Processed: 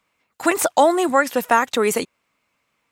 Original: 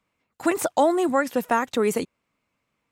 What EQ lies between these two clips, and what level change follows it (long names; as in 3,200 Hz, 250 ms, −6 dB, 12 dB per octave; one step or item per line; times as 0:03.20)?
low-shelf EQ 460 Hz −9.5 dB
+8.0 dB